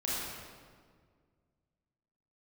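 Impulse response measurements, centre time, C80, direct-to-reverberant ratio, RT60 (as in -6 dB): 0.127 s, -1.0 dB, -7.5 dB, 1.8 s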